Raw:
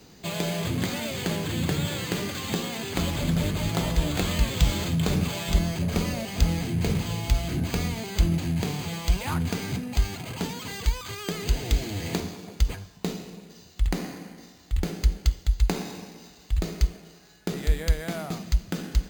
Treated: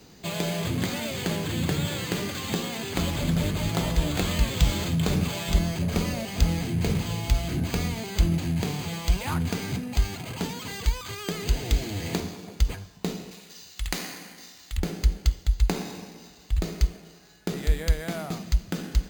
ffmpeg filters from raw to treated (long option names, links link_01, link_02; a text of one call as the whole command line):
ffmpeg -i in.wav -filter_complex "[0:a]asettb=1/sr,asplit=3[link_01][link_02][link_03];[link_01]atrim=end=13.314[link_04];[link_02]atrim=start=13.31:end=14.77,asetpts=PTS-STARTPTS,afade=type=in:duration=0.004:curve=qsin,afade=type=out:start_time=1.456:duration=0.004:curve=qsin,tiltshelf=frequency=900:gain=-8[link_05];[link_03]atrim=start=14.766[link_06];[link_04][link_05]acrossfade=duration=0.004:curve1=hsin:curve2=qsin[link_07];[link_07][link_06]acrossfade=duration=0.004:curve1=qsin:curve2=hsin" out.wav